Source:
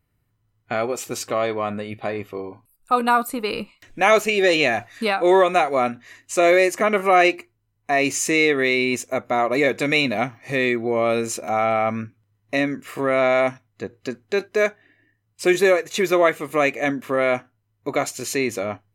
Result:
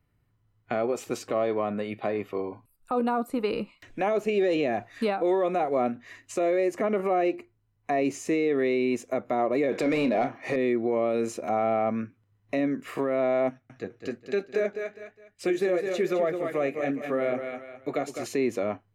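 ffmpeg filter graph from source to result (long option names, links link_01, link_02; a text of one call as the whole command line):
ffmpeg -i in.wav -filter_complex "[0:a]asettb=1/sr,asplit=3[link_01][link_02][link_03];[link_01]atrim=end=9.724[link_04];[link_02]atrim=start=9.72:end=10.56,asetpts=PTS-STARTPTS,afade=type=in:duration=0.004:curve=qsin,afade=type=out:start_time=0.836:duration=0.004:curve=qsin,asplit=2[link_05][link_06];[link_06]highpass=frequency=720:poles=1,volume=18dB,asoftclip=type=tanh:threshold=-5dB[link_07];[link_05][link_07]amix=inputs=2:normalize=0,lowpass=frequency=6300:poles=1,volume=-6dB,asplit=2[link_08][link_09];[link_09]adelay=32,volume=-12dB[link_10];[link_08][link_10]amix=inputs=2:normalize=0,atrim=end_sample=37044[link_11];[link_03]atrim=start=10.556[link_12];[link_04][link_11]acrossfade=duration=0.004:curve1=hsin:curve2=qsin[link_13];[link_13][link_12]acrossfade=duration=0.004:curve1=qsin:curve2=hsin,asettb=1/sr,asplit=3[link_14][link_15][link_16];[link_14]atrim=end=13.494[link_17];[link_15]atrim=start=13.49:end=18.26,asetpts=PTS-STARTPTS,afade=type=in:duration=0.004:curve=qsin,afade=type=out:start_time=4.766:duration=0.004:curve=qsin,aecho=1:1:205|410|615:0.355|0.103|0.0298,atrim=end_sample=210357,flanger=delay=4.2:depth=8:regen=-52:speed=1.1:shape=sinusoidal,bandreject=frequency=1000:width=5.9[link_18];[link_16]atrim=start=18.256[link_19];[link_17][link_18]acrossfade=duration=0.004:curve1=hsin:curve2=qsin[link_20];[link_20][link_19]acrossfade=duration=0.004:curve1=qsin:curve2=hsin,acrossover=split=160|670[link_21][link_22][link_23];[link_21]acompressor=threshold=-50dB:ratio=4[link_24];[link_22]acompressor=threshold=-18dB:ratio=4[link_25];[link_23]acompressor=threshold=-34dB:ratio=4[link_26];[link_24][link_25][link_26]amix=inputs=3:normalize=0,highshelf=frequency=4700:gain=-9,alimiter=limit=-17dB:level=0:latency=1:release=32" out.wav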